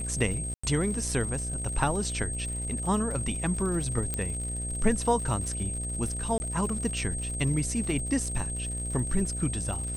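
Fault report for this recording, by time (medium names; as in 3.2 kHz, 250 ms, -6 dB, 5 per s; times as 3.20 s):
buzz 60 Hz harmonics 12 -35 dBFS
crackle 110 per s -36 dBFS
whine 8.4 kHz -34 dBFS
0.54–0.64 s: dropout 95 ms
4.14 s: pop -15 dBFS
6.38–6.40 s: dropout 20 ms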